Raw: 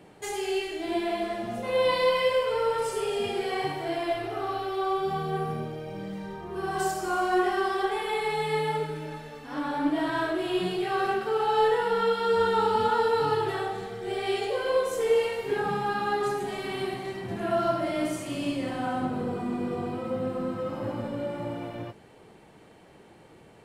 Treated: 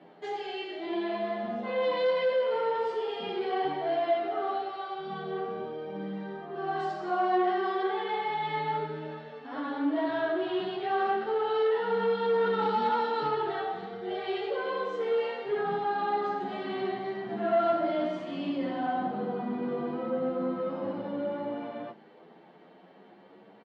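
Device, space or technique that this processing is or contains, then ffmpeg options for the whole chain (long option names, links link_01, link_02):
barber-pole flanger into a guitar amplifier: -filter_complex "[0:a]asplit=2[link_01][link_02];[link_02]adelay=9.7,afreqshift=0.45[link_03];[link_01][link_03]amix=inputs=2:normalize=1,asoftclip=type=tanh:threshold=-23dB,highpass=frequency=180:width=0.5412,highpass=frequency=180:width=1.3066,highpass=84,equalizer=frequency=200:width_type=q:width=4:gain=4,equalizer=frequency=700:width_type=q:width=4:gain=4,equalizer=frequency=2500:width_type=q:width=4:gain=-6,lowpass=frequency=3800:width=0.5412,lowpass=frequency=3800:width=1.3066,asettb=1/sr,asplit=3[link_04][link_05][link_06];[link_04]atrim=end=12.624[link_07];[link_05]atrim=start=12.62:end=13.28,asetpts=PTS-STARTPTS,afade=type=in:duration=0.004:curve=qsin,afade=type=out:start_time=0.656:duration=0.004:curve=qsin,bass=frequency=250:gain=3,treble=frequency=4000:gain=7[link_08];[link_06]atrim=start=13.276[link_09];[link_07][link_08]acrossfade=duration=0.004:curve1=hsin:curve2=qsin[link_10];[link_10][link_09]acrossfade=duration=0.004:curve1=qsin:curve2=hsin,volume=1.5dB"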